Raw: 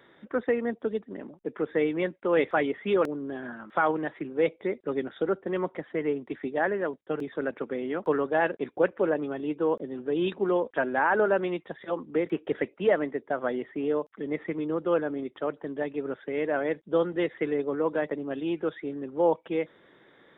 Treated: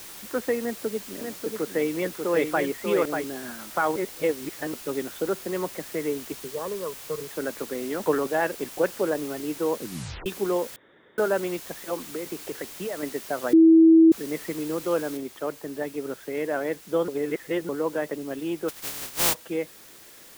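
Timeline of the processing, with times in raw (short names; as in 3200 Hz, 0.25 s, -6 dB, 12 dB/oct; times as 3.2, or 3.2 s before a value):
0.62–3.24 echo 0.59 s -5 dB
3.96–4.74 reverse
6.32–7.31 EQ curve 170 Hz 0 dB, 290 Hz -13 dB, 470 Hz +2 dB, 750 Hz -15 dB, 1100 Hz +7 dB, 1600 Hz -24 dB, 3000 Hz -10 dB, 4400 Hz -24 dB
7.81–8.27 transient shaper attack +3 dB, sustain +8 dB
9.78 tape stop 0.48 s
10.76–11.18 room tone
12.05–13.03 compressor 5:1, threshold -29 dBFS
13.53–14.12 bleep 325 Hz -10.5 dBFS
15.17 noise floor step -42 dB -49 dB
17.08–17.69 reverse
18.68–19.33 spectral contrast lowered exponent 0.18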